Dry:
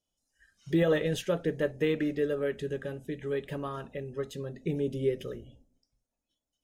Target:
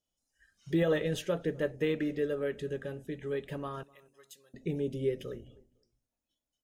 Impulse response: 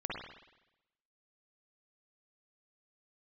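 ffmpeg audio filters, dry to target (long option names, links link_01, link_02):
-filter_complex "[0:a]asettb=1/sr,asplit=3[link_01][link_02][link_03];[link_01]atrim=end=3.834[link_04];[link_02]atrim=start=3.83:end=4.54,asetpts=PTS-STARTPTS,afade=type=in:duration=0.004:curve=qsin,afade=type=out:start_time=0.706:duration=0.004:curve=qsin,aderivative[link_05];[link_03]atrim=start=4.536[link_06];[link_04][link_05]acrossfade=duration=0.004:curve1=hsin:curve2=qsin[link_07];[link_07][link_06]acrossfade=duration=0.004:curve1=qsin:curve2=hsin,asplit=2[link_08][link_09];[link_09]adelay=253,lowpass=frequency=1500:poles=1,volume=-23.5dB,asplit=2[link_10][link_11];[link_11]adelay=253,lowpass=frequency=1500:poles=1,volume=0.28[link_12];[link_10][link_12]amix=inputs=2:normalize=0[link_13];[link_08][link_13]amix=inputs=2:normalize=0,volume=-2.5dB"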